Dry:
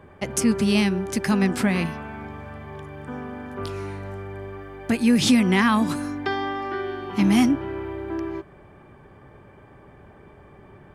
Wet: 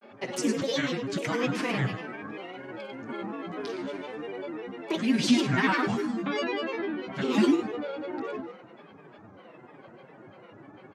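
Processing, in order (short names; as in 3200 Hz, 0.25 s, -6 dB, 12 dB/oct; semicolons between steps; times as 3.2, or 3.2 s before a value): steep high-pass 160 Hz 36 dB/oct; in parallel at -2 dB: compressor, threshold -35 dBFS, peak gain reduction 19.5 dB; on the sum: comb 7.2 ms, depth 89%; thinning echo 0.102 s, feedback 27%, level -8 dB; on a send at -7.5 dB: reverb RT60 0.30 s, pre-delay 39 ms; on the sum: grains, spray 14 ms, pitch spread up and down by 7 st; LPF 6300 Hz 12 dB/oct; gain -7.5 dB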